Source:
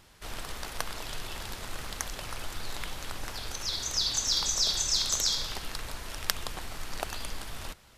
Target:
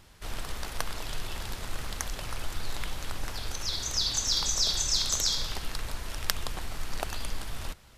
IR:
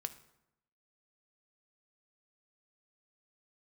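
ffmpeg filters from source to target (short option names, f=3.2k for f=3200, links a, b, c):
-af "lowshelf=f=160:g=5.5"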